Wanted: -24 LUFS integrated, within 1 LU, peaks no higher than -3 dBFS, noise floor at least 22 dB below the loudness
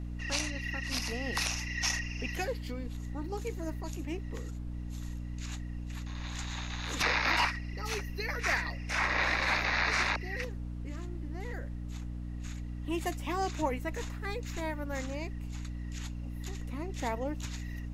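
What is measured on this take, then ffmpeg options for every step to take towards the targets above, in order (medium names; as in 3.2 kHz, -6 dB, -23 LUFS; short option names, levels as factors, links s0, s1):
hum 60 Hz; highest harmonic 300 Hz; hum level -36 dBFS; noise floor -40 dBFS; noise floor target -56 dBFS; loudness -34.0 LUFS; peak level -16.0 dBFS; loudness target -24.0 LUFS
-> -af "bandreject=f=60:t=h:w=4,bandreject=f=120:t=h:w=4,bandreject=f=180:t=h:w=4,bandreject=f=240:t=h:w=4,bandreject=f=300:t=h:w=4"
-af "afftdn=nr=16:nf=-40"
-af "volume=3.16"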